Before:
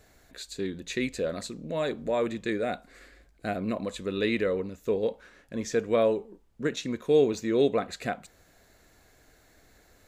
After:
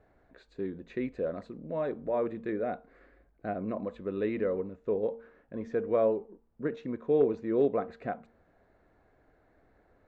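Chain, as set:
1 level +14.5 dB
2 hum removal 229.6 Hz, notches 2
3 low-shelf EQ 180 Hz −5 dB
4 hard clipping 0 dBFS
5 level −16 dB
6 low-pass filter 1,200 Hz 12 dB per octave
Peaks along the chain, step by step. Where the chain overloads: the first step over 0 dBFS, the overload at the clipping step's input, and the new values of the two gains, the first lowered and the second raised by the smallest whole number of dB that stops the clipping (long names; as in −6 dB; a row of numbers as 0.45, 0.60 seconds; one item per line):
+3.0, +3.5, +3.0, 0.0, −16.0, −15.5 dBFS
step 1, 3.0 dB
step 1 +11.5 dB, step 5 −13 dB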